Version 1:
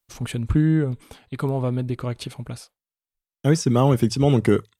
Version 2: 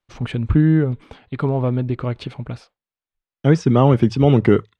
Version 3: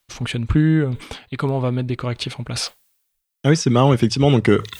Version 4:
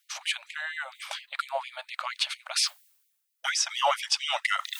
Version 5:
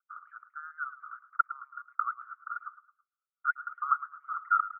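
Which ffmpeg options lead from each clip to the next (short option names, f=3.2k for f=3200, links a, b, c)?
-af "lowpass=3.1k,volume=4dB"
-af "areverse,acompressor=mode=upward:threshold=-21dB:ratio=2.5,areverse,crystalizer=i=5.5:c=0,volume=-1.5dB"
-af "afftfilt=real='re*gte(b*sr/1024,540*pow(1900/540,0.5+0.5*sin(2*PI*4.3*pts/sr)))':imag='im*gte(b*sr/1024,540*pow(1900/540,0.5+0.5*sin(2*PI*4.3*pts/sr)))':win_size=1024:overlap=0.75"
-af "asuperpass=centerf=1300:order=8:qfactor=4.4,aecho=1:1:109|218|327:0.188|0.0697|0.0258,volume=6dB"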